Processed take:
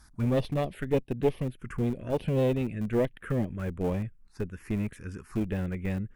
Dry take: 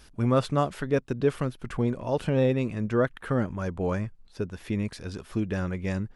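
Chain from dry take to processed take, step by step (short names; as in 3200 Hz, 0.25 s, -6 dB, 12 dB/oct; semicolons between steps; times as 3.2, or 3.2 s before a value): added harmonics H 2 -7 dB, 3 -27 dB, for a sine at -10.5 dBFS; envelope phaser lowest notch 470 Hz, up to 1400 Hz, full sweep at -24.5 dBFS; in parallel at -10 dB: Schmitt trigger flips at -27.5 dBFS; on the sum: dynamic EQ 4400 Hz, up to -6 dB, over -57 dBFS, Q 1.3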